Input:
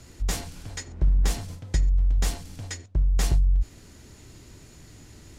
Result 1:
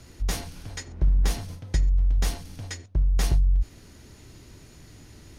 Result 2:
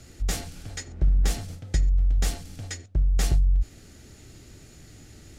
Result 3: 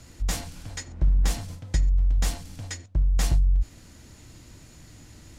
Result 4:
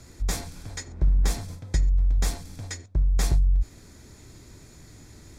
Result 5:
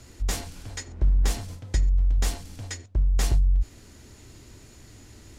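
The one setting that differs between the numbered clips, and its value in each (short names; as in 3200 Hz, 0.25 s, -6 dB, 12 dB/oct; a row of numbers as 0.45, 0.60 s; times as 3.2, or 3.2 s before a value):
notch, frequency: 7500, 1000, 400, 2900, 160 Hz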